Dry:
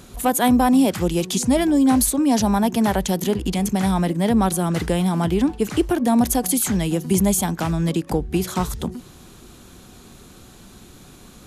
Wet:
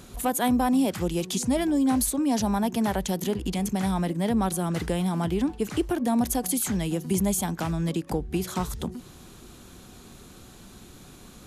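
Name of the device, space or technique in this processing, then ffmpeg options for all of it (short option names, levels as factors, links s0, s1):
parallel compression: -filter_complex "[0:a]asplit=2[s0][s1];[s1]acompressor=threshold=0.0355:ratio=6,volume=0.841[s2];[s0][s2]amix=inputs=2:normalize=0,volume=0.398"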